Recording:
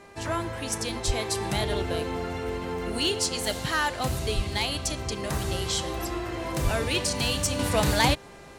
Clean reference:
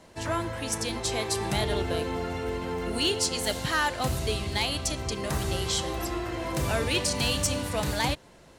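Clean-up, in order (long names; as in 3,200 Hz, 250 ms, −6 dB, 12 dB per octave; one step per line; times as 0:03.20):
hum removal 399 Hz, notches 6
0:01.06–0:01.18: high-pass filter 140 Hz 24 dB per octave
0:04.35–0:04.47: high-pass filter 140 Hz 24 dB per octave
0:06.63–0:06.75: high-pass filter 140 Hz 24 dB per octave
level 0 dB, from 0:07.59 −5.5 dB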